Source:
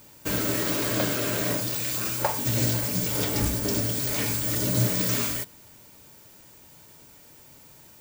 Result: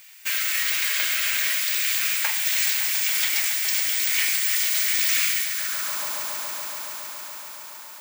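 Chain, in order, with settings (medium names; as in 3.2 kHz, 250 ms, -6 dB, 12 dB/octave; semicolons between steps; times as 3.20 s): echo with a slow build-up 140 ms, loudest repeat 5, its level -13 dB; high-pass sweep 2.1 kHz -> 960 Hz, 5.44–6.06 s; trim +3.5 dB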